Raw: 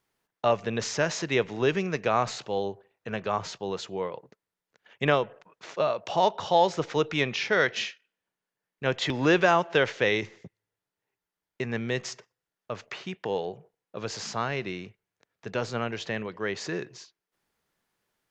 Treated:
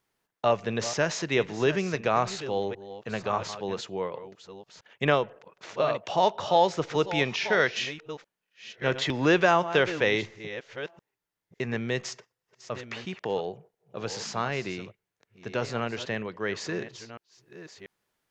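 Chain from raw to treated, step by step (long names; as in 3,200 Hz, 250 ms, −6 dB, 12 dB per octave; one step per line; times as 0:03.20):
delay that plays each chunk backwards 687 ms, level −13 dB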